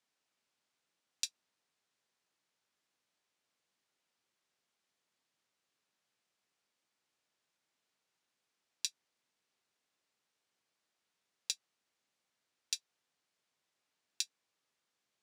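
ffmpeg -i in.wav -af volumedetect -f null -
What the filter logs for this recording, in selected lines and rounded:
mean_volume: -53.0 dB
max_volume: -13.0 dB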